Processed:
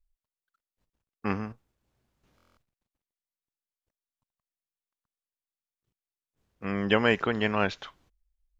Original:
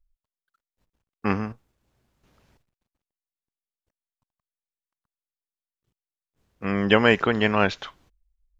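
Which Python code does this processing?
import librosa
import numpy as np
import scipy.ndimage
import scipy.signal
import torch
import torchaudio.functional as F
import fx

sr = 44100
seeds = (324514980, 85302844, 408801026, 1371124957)

y = fx.buffer_glitch(x, sr, at_s=(2.36, 4.52), block=1024, repeats=8)
y = y * librosa.db_to_amplitude(-5.5)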